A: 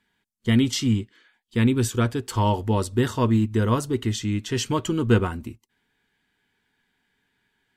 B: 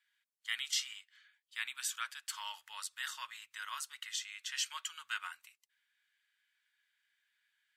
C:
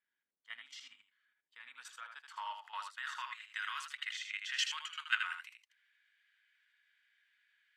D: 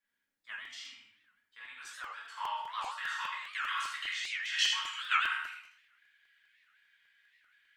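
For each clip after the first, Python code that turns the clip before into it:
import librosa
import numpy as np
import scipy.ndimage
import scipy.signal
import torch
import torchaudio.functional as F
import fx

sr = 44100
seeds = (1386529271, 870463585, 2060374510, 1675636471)

y1 = scipy.signal.sosfilt(scipy.signal.cheby2(4, 60, 410.0, 'highpass', fs=sr, output='sos'), x)
y1 = F.gain(torch.from_numpy(y1), -6.0).numpy()
y2 = fx.level_steps(y1, sr, step_db=12)
y2 = fx.filter_sweep_bandpass(y2, sr, from_hz=300.0, to_hz=2000.0, start_s=1.35, end_s=3.61, q=1.1)
y2 = y2 + 10.0 ** (-6.5 / 20.0) * np.pad(y2, (int(79 * sr / 1000.0), 0))[:len(y2)]
y2 = F.gain(torch.from_numpy(y2), 10.0).numpy()
y3 = fx.room_shoebox(y2, sr, seeds[0], volume_m3=200.0, walls='mixed', distance_m=2.3)
y3 = fx.buffer_crackle(y3, sr, first_s=0.65, period_s=0.2, block=128, kind='repeat')
y3 = fx.record_warp(y3, sr, rpm=78.0, depth_cents=250.0)
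y3 = F.gain(torch.from_numpy(y3), -2.0).numpy()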